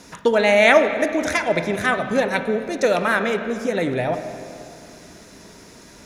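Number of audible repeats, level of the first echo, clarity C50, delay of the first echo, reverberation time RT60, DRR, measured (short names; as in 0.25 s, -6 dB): none, none, 8.5 dB, none, 2.5 s, 7.0 dB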